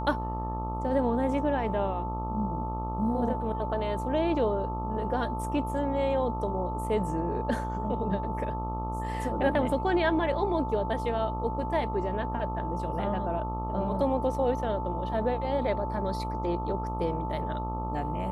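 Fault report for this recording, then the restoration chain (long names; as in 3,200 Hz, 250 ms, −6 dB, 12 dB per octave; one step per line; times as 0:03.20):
mains buzz 60 Hz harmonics 22 −34 dBFS
whistle 880 Hz −34 dBFS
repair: notch filter 880 Hz, Q 30
hum removal 60 Hz, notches 22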